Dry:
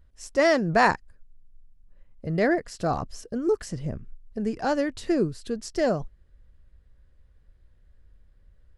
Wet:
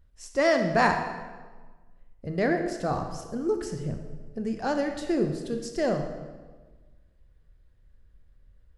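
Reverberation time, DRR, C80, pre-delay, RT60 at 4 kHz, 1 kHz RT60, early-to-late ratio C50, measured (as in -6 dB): 1.4 s, 5.0 dB, 8.5 dB, 20 ms, 1.0 s, 1.3 s, 7.0 dB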